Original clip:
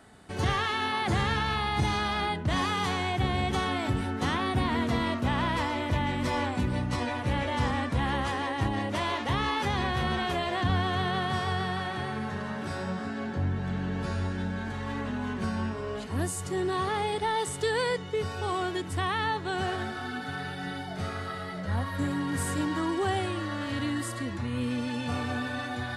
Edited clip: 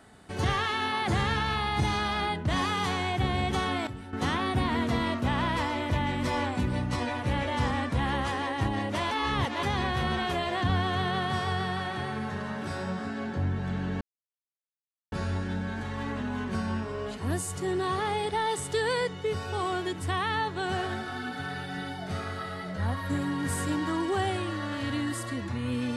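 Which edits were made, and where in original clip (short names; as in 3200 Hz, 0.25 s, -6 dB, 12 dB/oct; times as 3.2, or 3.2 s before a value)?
3.87–4.13 gain -11.5 dB
9.11–9.63 reverse
14.01 insert silence 1.11 s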